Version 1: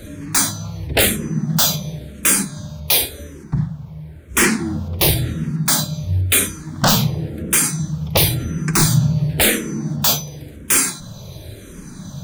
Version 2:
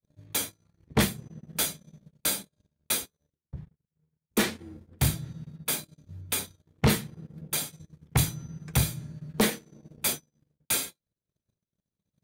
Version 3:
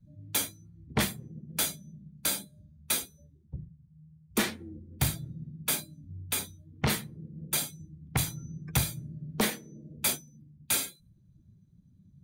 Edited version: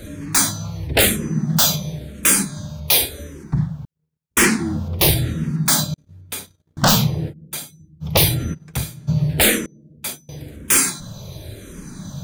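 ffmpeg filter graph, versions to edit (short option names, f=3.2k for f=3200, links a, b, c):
-filter_complex "[1:a]asplit=3[a][b][c];[2:a]asplit=2[d][e];[0:a]asplit=6[f][g][h][i][j][k];[f]atrim=end=3.852[l];[a]atrim=start=3.848:end=4.372[m];[g]atrim=start=4.368:end=5.942[n];[b]atrim=start=5.938:end=6.772[o];[h]atrim=start=6.768:end=7.34[p];[d]atrim=start=7.28:end=8.06[q];[i]atrim=start=8:end=8.55[r];[c]atrim=start=8.53:end=9.09[s];[j]atrim=start=9.07:end=9.662[t];[e]atrim=start=9.658:end=10.292[u];[k]atrim=start=10.288[v];[l][m]acrossfade=d=0.004:c1=hsin:c2=hsin[w];[w][n]acrossfade=d=0.004:c1=hsin:c2=hsin[x];[x][o]acrossfade=d=0.004:c1=hsin:c2=hsin[y];[y][p]acrossfade=d=0.004:c1=hsin:c2=hsin[z];[z][q]acrossfade=d=0.06:c1=tri:c2=tri[aa];[aa][r]acrossfade=d=0.06:c1=tri:c2=tri[ab];[ab][s]acrossfade=d=0.02:c1=tri:c2=tri[ac];[ac][t]acrossfade=d=0.02:c1=tri:c2=tri[ad];[ad][u]acrossfade=d=0.004:c1=hsin:c2=hsin[ae];[ae][v]acrossfade=d=0.004:c1=hsin:c2=hsin"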